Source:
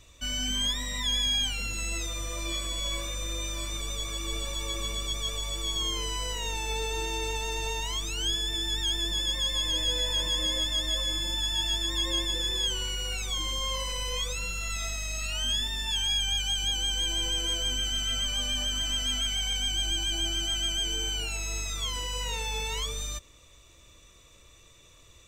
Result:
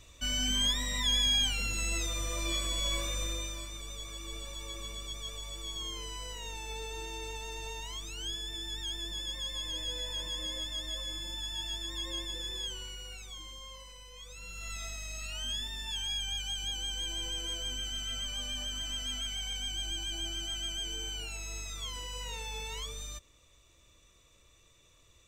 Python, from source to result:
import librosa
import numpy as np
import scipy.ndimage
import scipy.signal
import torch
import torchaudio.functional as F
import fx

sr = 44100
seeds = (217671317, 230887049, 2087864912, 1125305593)

y = fx.gain(x, sr, db=fx.line((3.22, -0.5), (3.71, -9.0), (12.59, -9.0), (14.13, -19.5), (14.68, -7.5)))